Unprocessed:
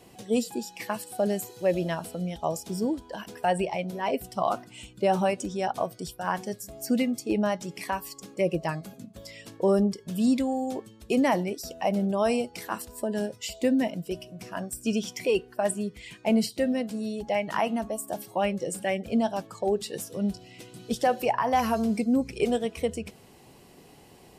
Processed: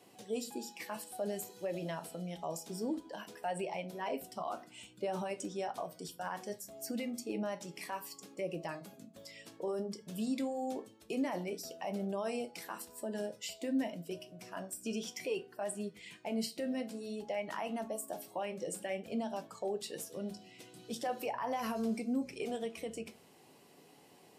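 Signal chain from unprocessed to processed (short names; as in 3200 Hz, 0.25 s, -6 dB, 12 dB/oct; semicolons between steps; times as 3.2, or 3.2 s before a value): Bessel high-pass 220 Hz, order 2; limiter -21.5 dBFS, peak gain reduction 9.5 dB; flange 0.57 Hz, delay 9.5 ms, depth 3.4 ms, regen -69%; on a send: reverb RT60 0.35 s, pre-delay 7 ms, DRR 12.5 dB; on the sum: gain -2.5 dB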